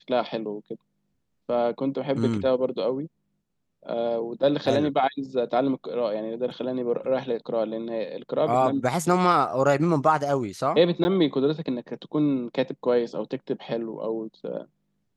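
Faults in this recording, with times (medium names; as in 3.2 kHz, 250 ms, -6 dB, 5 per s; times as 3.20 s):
11.04–11.05 s: dropout 10 ms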